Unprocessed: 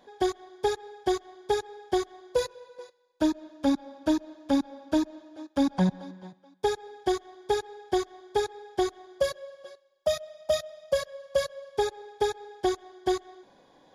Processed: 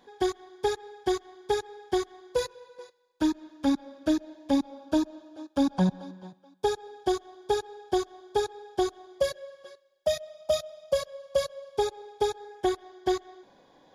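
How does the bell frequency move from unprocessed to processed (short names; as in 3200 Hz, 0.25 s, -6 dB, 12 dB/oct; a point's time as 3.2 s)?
bell -10 dB 0.26 oct
3.68 s 620 Hz
4.89 s 2000 Hz
9.09 s 2000 Hz
9.61 s 610 Hz
10.4 s 1800 Hz
12.31 s 1800 Hz
12.87 s 9000 Hz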